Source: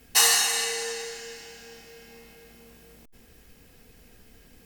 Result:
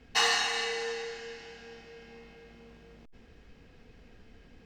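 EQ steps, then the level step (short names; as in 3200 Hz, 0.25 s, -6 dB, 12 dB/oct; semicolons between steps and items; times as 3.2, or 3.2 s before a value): air absorption 180 m; 0.0 dB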